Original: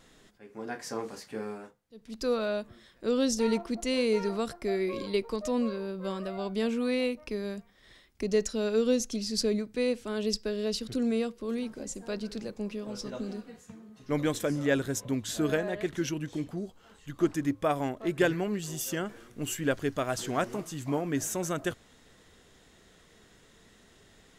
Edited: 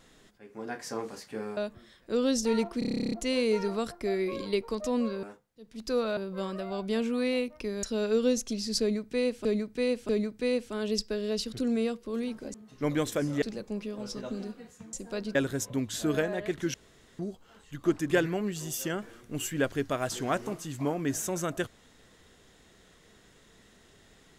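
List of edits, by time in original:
1.57–2.51 s: move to 5.84 s
3.73 s: stutter 0.03 s, 12 plays
7.50–8.46 s: delete
9.44–10.08 s: loop, 3 plays
11.89–12.31 s: swap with 13.82–14.70 s
16.09–16.54 s: room tone
17.46–18.18 s: delete

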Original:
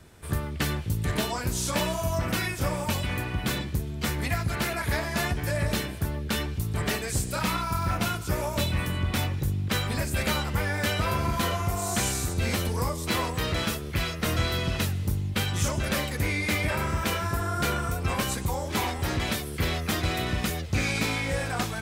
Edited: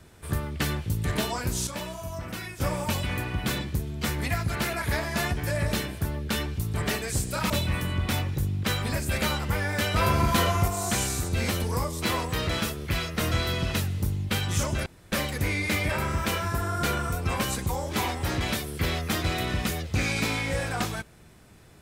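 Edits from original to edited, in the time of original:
1.67–2.60 s: gain -8 dB
7.50–8.55 s: delete
11.01–11.73 s: gain +4 dB
15.91 s: insert room tone 0.26 s

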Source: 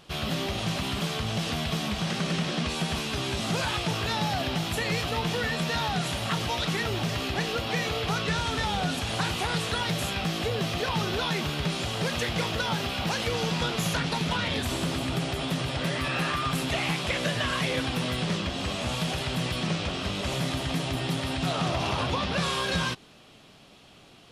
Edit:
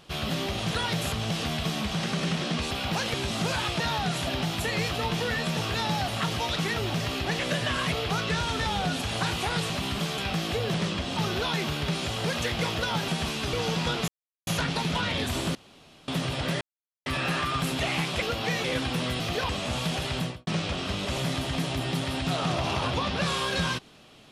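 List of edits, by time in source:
0.71–1.19 s: swap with 9.68–10.09 s
2.78–3.23 s: swap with 12.85–13.28 s
3.89–4.40 s: swap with 5.70–6.17 s
7.48–7.90 s: swap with 17.13–17.66 s
10.65–10.94 s: swap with 18.22–18.65 s
13.83 s: insert silence 0.39 s
14.91–15.44 s: room tone
15.97 s: insert silence 0.45 s
19.34–19.63 s: studio fade out

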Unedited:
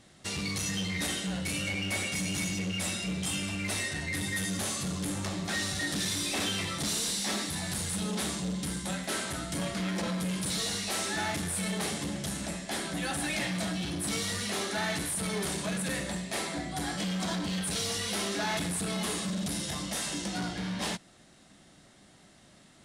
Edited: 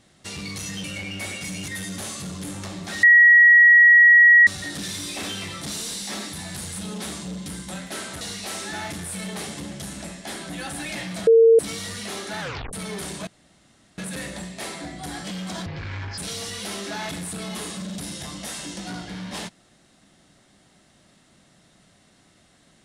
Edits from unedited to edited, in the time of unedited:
0.84–1.55 s: delete
2.39–4.29 s: delete
5.64 s: add tone 1.91 kHz -8.5 dBFS 1.44 s
9.38–10.65 s: delete
13.71–14.03 s: bleep 455 Hz -9.5 dBFS
14.84 s: tape stop 0.33 s
15.71 s: insert room tone 0.71 s
17.39–17.66 s: speed 52%

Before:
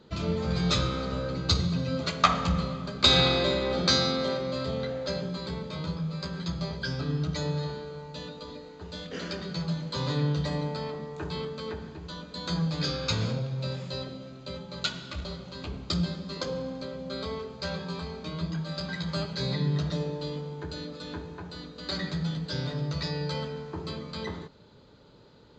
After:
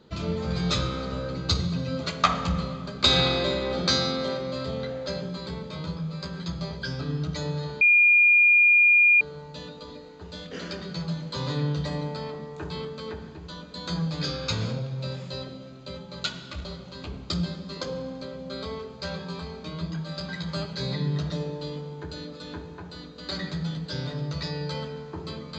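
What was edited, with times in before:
7.81 s: add tone 2.42 kHz -14 dBFS 1.40 s

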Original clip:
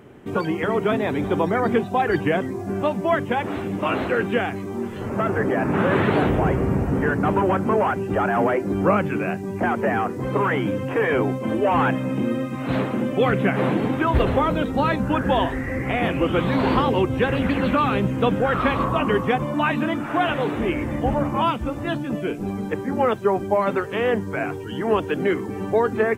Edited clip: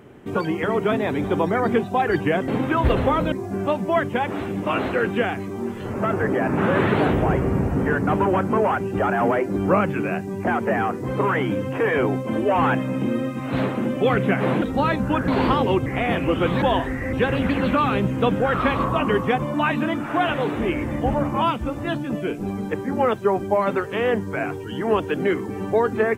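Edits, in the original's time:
13.78–14.62 s: move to 2.48 s
15.28–15.79 s: swap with 16.55–17.13 s

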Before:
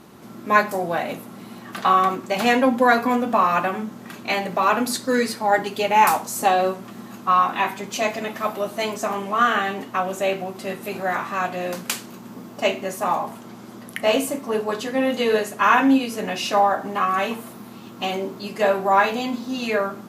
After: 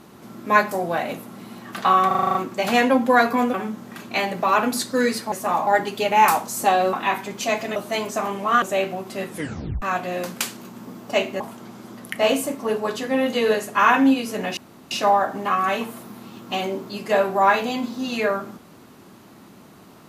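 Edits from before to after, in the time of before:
2.07 s: stutter 0.04 s, 8 plays
3.26–3.68 s: delete
6.72–7.46 s: delete
8.29–8.63 s: delete
9.49–10.11 s: delete
10.78 s: tape stop 0.53 s
12.89–13.24 s: move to 5.46 s
16.41 s: insert room tone 0.34 s

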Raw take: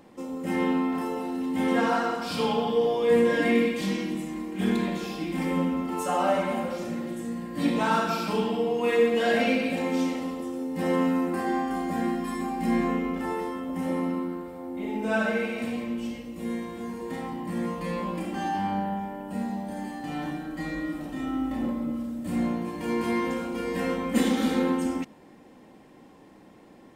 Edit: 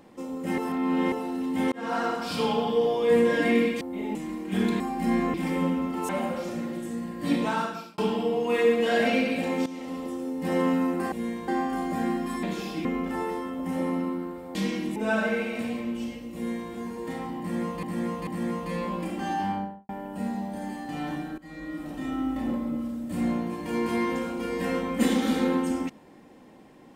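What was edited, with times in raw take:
0.58–1.12 s: reverse
1.72–2.05 s: fade in
3.81–4.22 s: swap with 14.65–14.99 s
4.87–5.29 s: swap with 12.41–12.95 s
6.04–6.43 s: delete
7.70–8.32 s: fade out
10.00–10.38 s: fade in, from -16 dB
16.38–16.74 s: copy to 11.46 s
17.42–17.86 s: loop, 3 plays
18.60–19.04 s: studio fade out
20.53–21.11 s: fade in, from -19 dB

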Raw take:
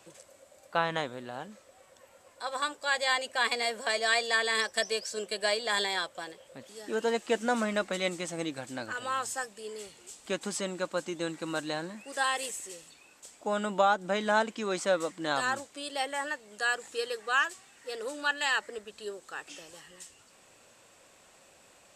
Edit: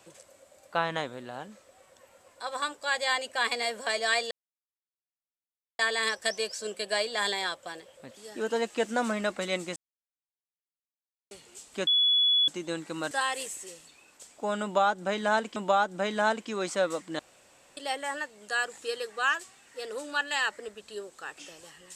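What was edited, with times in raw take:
4.31 s: insert silence 1.48 s
8.28–9.83 s: mute
10.39–11.00 s: bleep 3.4 kHz -20 dBFS
11.63–12.14 s: delete
13.66–14.59 s: loop, 2 plays
15.29–15.87 s: room tone

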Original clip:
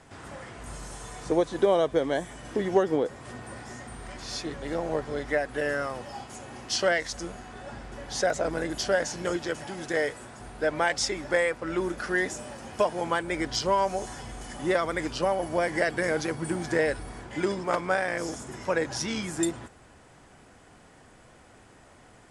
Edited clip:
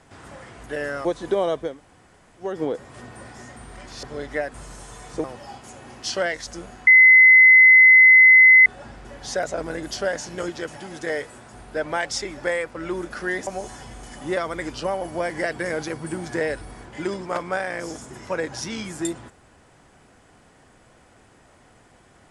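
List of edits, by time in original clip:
0.66–1.36 s: swap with 5.51–5.90 s
2.00–2.80 s: room tone, crossfade 0.24 s
4.34–5.00 s: delete
7.53 s: add tone 2.04 kHz -7.5 dBFS 1.79 s
12.34–13.85 s: delete

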